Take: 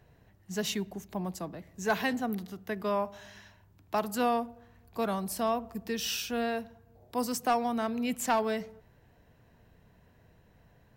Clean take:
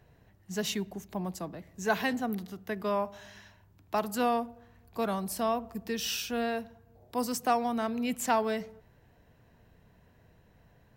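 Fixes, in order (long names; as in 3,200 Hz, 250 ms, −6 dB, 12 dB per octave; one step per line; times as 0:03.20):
clipped peaks rebuilt −19.5 dBFS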